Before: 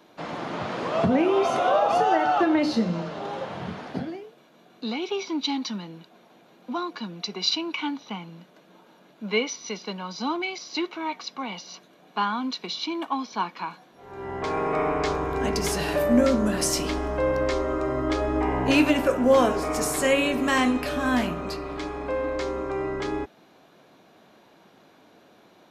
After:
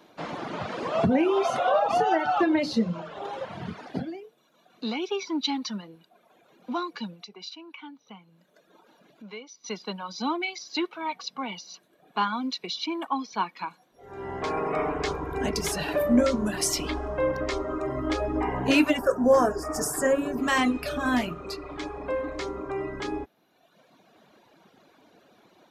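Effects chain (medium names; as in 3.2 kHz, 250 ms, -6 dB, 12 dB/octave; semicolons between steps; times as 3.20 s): reverb removal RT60 1.3 s; 7.15–9.64 s: compression 2:1, threshold -52 dBFS, peak gain reduction 18 dB; 18.99–20.38 s: time-frequency box 1.9–4.6 kHz -18 dB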